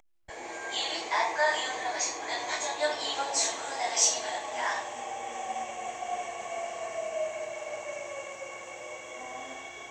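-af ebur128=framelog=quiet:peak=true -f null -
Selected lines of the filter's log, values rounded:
Integrated loudness:
  I:         -31.5 LUFS
  Threshold: -41.6 LUFS
Loudness range:
  LRA:         8.7 LU
  Threshold: -51.2 LUFS
  LRA low:   -37.0 LUFS
  LRA high:  -28.3 LUFS
True peak:
  Peak:      -10.6 dBFS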